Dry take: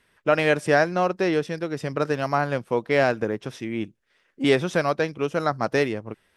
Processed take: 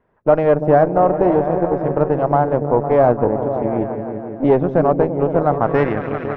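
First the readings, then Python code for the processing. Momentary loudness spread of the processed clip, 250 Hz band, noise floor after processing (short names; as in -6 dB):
7 LU, +7.5 dB, -30 dBFS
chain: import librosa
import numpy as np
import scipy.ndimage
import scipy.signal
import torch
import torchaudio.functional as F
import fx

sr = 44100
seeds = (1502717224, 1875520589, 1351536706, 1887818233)

y = fx.echo_opening(x, sr, ms=169, hz=200, octaves=1, feedback_pct=70, wet_db=-3)
y = fx.cheby_harmonics(y, sr, harmonics=(8,), levels_db=(-21,), full_scale_db=-5.0)
y = fx.filter_sweep_lowpass(y, sr, from_hz=800.0, to_hz=2200.0, start_s=5.51, end_s=6.12, q=1.6)
y = F.gain(torch.from_numpy(y), 4.0).numpy()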